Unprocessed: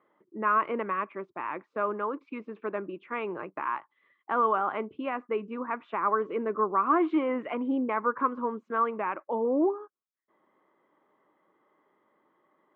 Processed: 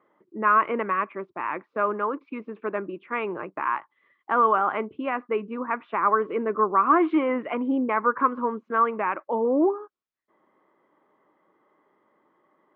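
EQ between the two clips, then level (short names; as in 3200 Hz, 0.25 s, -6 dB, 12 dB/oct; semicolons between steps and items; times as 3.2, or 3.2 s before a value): dynamic EQ 2000 Hz, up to +4 dB, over -39 dBFS, Q 0.79; air absorption 150 m; +4.0 dB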